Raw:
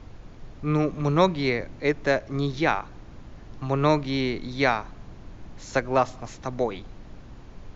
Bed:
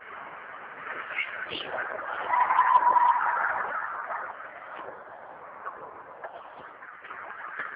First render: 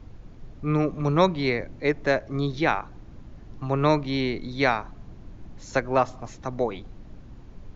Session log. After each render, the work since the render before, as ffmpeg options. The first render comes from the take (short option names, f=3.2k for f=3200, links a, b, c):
-af "afftdn=nr=6:nf=-45"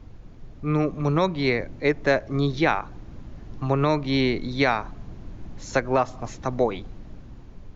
-af "dynaudnorm=f=530:g=5:m=6dB,alimiter=limit=-9dB:level=0:latency=1:release=214"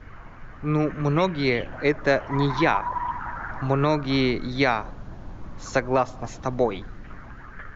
-filter_complex "[1:a]volume=-7.5dB[a];[0:a][a]amix=inputs=2:normalize=0"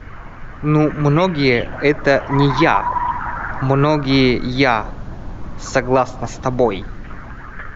-af "volume=8.5dB,alimiter=limit=-3dB:level=0:latency=1"